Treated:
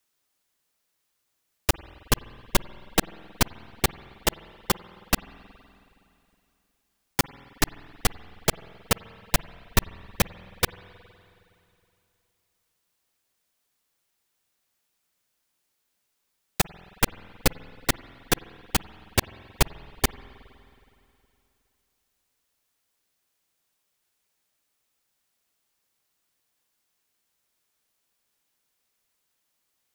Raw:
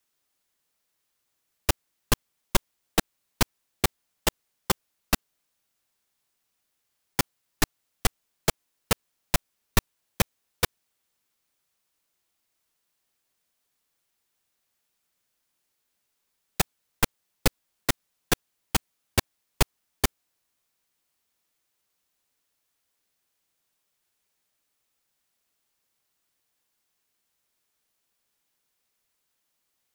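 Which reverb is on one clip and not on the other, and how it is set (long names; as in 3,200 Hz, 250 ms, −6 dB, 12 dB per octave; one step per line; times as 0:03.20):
spring reverb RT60 2.8 s, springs 46/52 ms, chirp 45 ms, DRR 17 dB
level +1 dB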